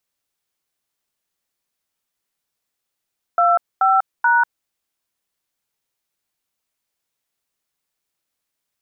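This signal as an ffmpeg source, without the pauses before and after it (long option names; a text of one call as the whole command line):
ffmpeg -f lavfi -i "aevalsrc='0.188*clip(min(mod(t,0.431),0.194-mod(t,0.431))/0.002,0,1)*(eq(floor(t/0.431),0)*(sin(2*PI*697*mod(t,0.431))+sin(2*PI*1336*mod(t,0.431)))+eq(floor(t/0.431),1)*(sin(2*PI*770*mod(t,0.431))+sin(2*PI*1336*mod(t,0.431)))+eq(floor(t/0.431),2)*(sin(2*PI*941*mod(t,0.431))+sin(2*PI*1477*mod(t,0.431))))':duration=1.293:sample_rate=44100" out.wav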